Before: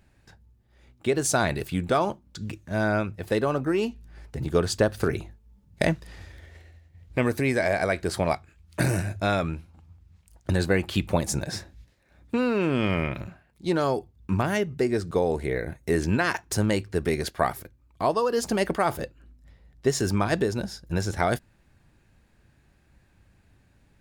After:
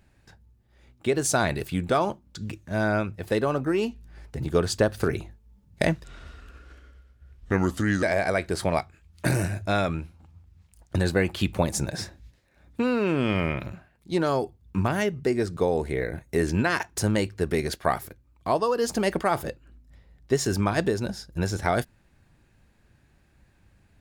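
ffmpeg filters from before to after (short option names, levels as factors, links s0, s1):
-filter_complex "[0:a]asplit=3[s0][s1][s2];[s0]atrim=end=6.044[s3];[s1]atrim=start=6.04:end=7.57,asetpts=PTS-STARTPTS,asetrate=33957,aresample=44100,atrim=end_sample=87627,asetpts=PTS-STARTPTS[s4];[s2]atrim=start=7.566[s5];[s3][s4]acrossfade=d=0.004:c1=hsin:c2=hsin[s6];[s6][s5]acrossfade=d=0.004:c1=hsin:c2=hsin"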